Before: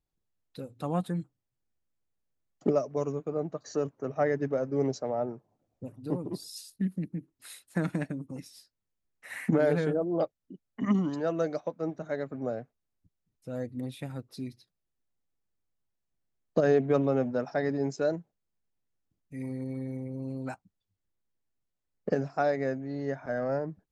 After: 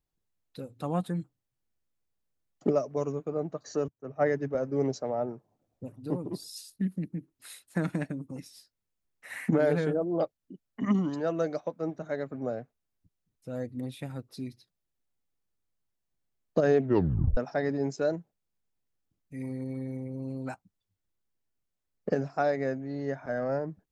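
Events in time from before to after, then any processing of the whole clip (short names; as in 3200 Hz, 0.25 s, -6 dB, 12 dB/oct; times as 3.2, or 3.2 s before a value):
3.88–4.55 three-band expander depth 100%
16.83 tape stop 0.54 s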